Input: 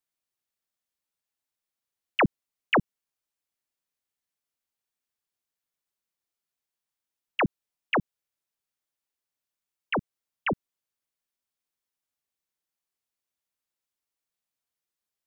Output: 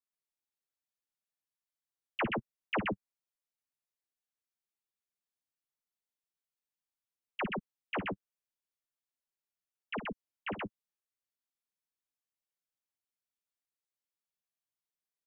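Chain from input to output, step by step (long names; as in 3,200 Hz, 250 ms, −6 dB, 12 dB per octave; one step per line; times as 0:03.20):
flanger 1.2 Hz, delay 3.9 ms, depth 8.2 ms, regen +14%
loudspeakers that aren't time-aligned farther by 19 metres −11 dB, 44 metres −2 dB
level −7.5 dB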